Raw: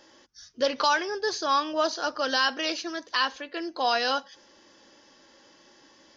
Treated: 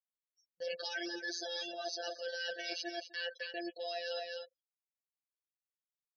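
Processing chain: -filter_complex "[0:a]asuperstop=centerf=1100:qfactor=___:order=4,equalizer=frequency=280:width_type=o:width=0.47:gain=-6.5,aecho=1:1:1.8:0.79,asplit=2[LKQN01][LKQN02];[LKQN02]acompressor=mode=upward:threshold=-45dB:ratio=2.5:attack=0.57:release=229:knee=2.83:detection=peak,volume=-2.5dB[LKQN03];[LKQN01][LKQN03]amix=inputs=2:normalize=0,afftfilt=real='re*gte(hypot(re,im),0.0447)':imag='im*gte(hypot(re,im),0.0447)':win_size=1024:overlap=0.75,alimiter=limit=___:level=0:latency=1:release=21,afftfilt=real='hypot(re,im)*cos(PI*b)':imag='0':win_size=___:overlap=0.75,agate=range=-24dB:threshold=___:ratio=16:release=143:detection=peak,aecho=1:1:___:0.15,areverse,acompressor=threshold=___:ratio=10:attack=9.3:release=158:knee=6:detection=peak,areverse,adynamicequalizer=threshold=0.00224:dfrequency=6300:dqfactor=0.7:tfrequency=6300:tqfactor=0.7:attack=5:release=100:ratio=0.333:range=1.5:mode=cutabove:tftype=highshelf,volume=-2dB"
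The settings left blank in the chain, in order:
1.6, -10.5dB, 1024, -45dB, 258, -35dB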